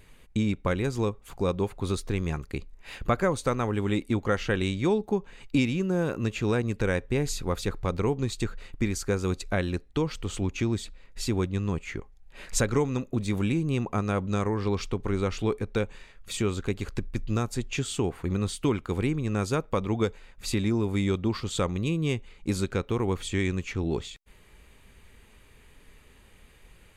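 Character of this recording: noise floor -55 dBFS; spectral tilt -6.0 dB/octave

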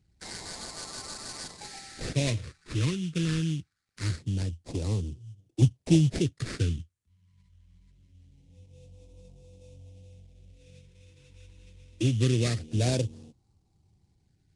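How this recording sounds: aliases and images of a low sample rate 3.1 kHz, jitter 20%; phasing stages 2, 0.24 Hz, lowest notch 660–1500 Hz; Nellymoser

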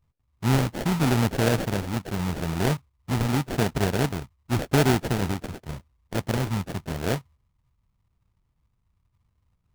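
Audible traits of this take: a buzz of ramps at a fixed pitch in blocks of 8 samples; phasing stages 6, 0.87 Hz, lowest notch 490–1200 Hz; aliases and images of a low sample rate 1.1 kHz, jitter 20%

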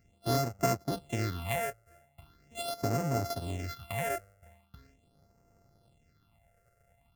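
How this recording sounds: a buzz of ramps at a fixed pitch in blocks of 64 samples; phasing stages 6, 0.41 Hz, lowest notch 250–3500 Hz

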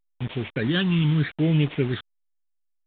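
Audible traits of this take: a buzz of ramps at a fixed pitch in blocks of 8 samples; phasing stages 8, 0.79 Hz, lowest notch 570–1400 Hz; a quantiser's noise floor 6-bit, dither none; A-law

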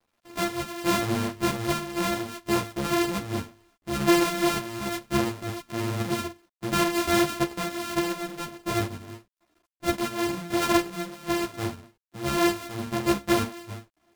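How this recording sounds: a buzz of ramps at a fixed pitch in blocks of 128 samples; random-step tremolo; a quantiser's noise floor 12-bit, dither none; a shimmering, thickened sound

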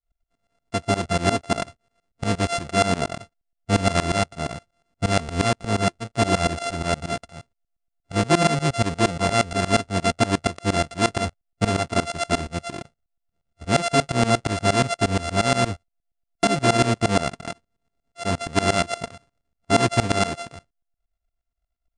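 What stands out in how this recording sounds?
a buzz of ramps at a fixed pitch in blocks of 64 samples; tremolo saw up 8.5 Hz, depth 95%; MP3

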